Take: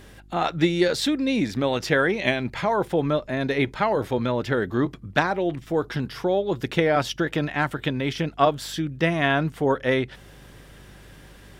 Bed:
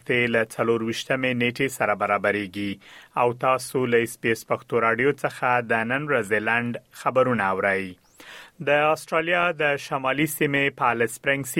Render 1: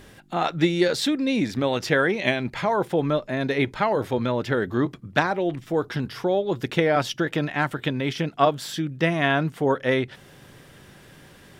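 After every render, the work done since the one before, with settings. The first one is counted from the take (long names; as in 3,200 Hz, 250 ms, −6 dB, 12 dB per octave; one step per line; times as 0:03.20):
hum removal 50 Hz, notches 2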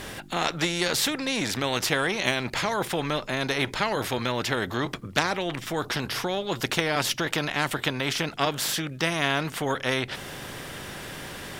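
every bin compressed towards the loudest bin 2 to 1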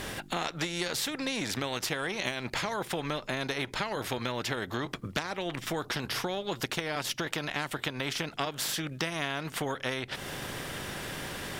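transient designer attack +1 dB, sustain −4 dB
downward compressor, threshold −29 dBFS, peak gain reduction 12 dB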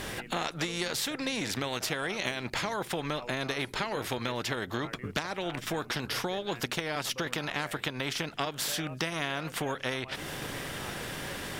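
mix in bed −25.5 dB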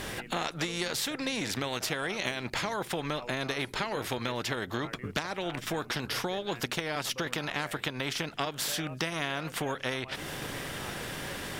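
no processing that can be heard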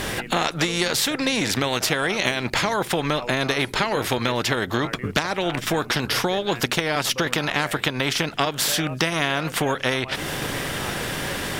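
level +10 dB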